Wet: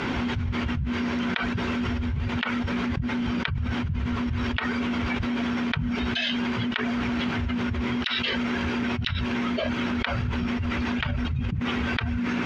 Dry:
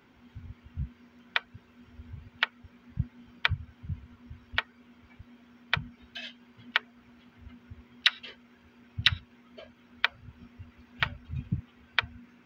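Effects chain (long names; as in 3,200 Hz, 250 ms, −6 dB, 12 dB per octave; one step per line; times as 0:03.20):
low-pass filter 6,400 Hz 12 dB per octave
envelope flattener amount 100%
level −7.5 dB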